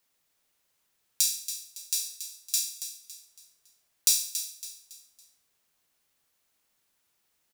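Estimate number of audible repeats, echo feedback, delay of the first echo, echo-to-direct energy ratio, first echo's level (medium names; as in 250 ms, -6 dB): 3, 38%, 279 ms, -10.0 dB, -10.5 dB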